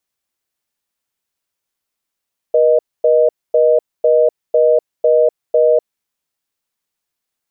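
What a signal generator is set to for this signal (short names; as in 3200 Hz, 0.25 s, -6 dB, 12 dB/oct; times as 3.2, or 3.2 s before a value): call progress tone reorder tone, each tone -11 dBFS 3.32 s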